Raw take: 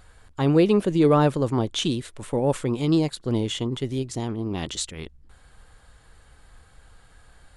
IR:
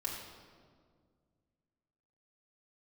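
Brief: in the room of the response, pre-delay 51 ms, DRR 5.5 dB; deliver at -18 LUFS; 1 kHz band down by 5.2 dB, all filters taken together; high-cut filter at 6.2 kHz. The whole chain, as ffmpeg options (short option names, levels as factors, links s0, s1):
-filter_complex "[0:a]lowpass=6200,equalizer=f=1000:t=o:g=-7,asplit=2[s0][s1];[1:a]atrim=start_sample=2205,adelay=51[s2];[s1][s2]afir=irnorm=-1:irlink=0,volume=0.422[s3];[s0][s3]amix=inputs=2:normalize=0,volume=1.88"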